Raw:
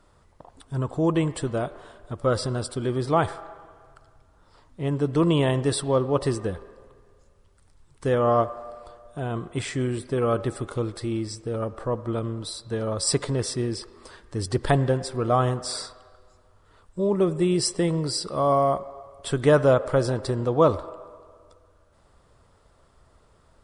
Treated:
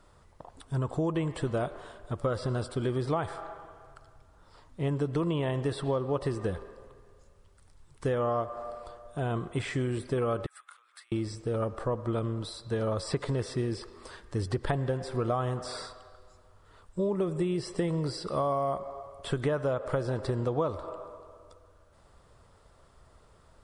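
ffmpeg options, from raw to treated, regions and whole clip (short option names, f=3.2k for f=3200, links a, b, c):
-filter_complex "[0:a]asettb=1/sr,asplit=3[a][b][c];[a]atrim=end=10.464[d];[b]atrim=start=10.46:end=11.12,asetpts=PTS-STARTPTS,afade=t=in:d=0.004:c=qsin,afade=t=out:st=0.656:d=0.004:c=qsin,equalizer=f=5.4k:t=o:w=2.1:g=-12,acompressor=threshold=-35dB:ratio=12:attack=3.2:release=140:knee=1:detection=peak,highpass=f=1.4k:w=0.5412,highpass=f=1.4k:w=1.3066[e];[c]atrim=start=11.116[f];[d][e]acrossfade=d=0.004:c1=hsin:c2=qsin[g];[g][f]acrossfade=d=0.004:c1=qsin:c2=hsin,acrossover=split=3200[h][i];[i]acompressor=threshold=-45dB:ratio=4:attack=1:release=60[j];[h][j]amix=inputs=2:normalize=0,equalizer=f=270:t=o:w=0.77:g=-2,acompressor=threshold=-25dB:ratio=12"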